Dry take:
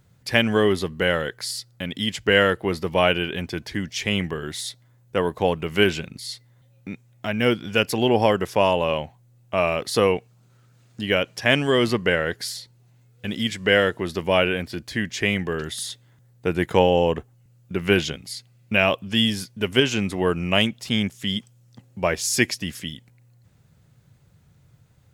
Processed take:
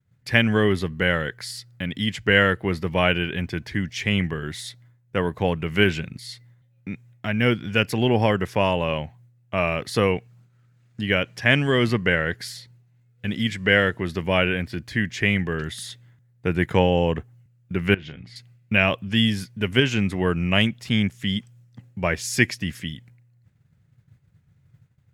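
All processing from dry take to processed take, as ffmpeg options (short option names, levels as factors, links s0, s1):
-filter_complex "[0:a]asettb=1/sr,asplit=3[s0][s1][s2];[s0]atrim=end=17.944[s3];[s1]atrim=start=17.94:end=18.36,asetpts=PTS-STARTPTS,afade=t=in:d=0.004:c=qsin,afade=t=out:st=0.416:d=0.004:c=qsin,lowpass=2900,acompressor=threshold=0.0224:ratio=10:attack=3.2:release=140:knee=1:detection=peak,asplit=2[s4][s5];[s5]adelay=34,volume=0.224[s6];[s4][s6]amix=inputs=2:normalize=0,atrim=end_sample=18522[s7];[s2]atrim=start=18.356[s8];[s3][s7]acrossfade=d=0.004:c1=hsin:c2=qsin[s9];[s9][s8]acrossfade=d=0.004:c1=qsin:c2=hsin,equalizer=f=1900:t=o:w=1.3:g=8.5,agate=range=0.0224:threshold=0.00355:ratio=3:detection=peak,equalizer=f=110:t=o:w=2.7:g=11,volume=0.501"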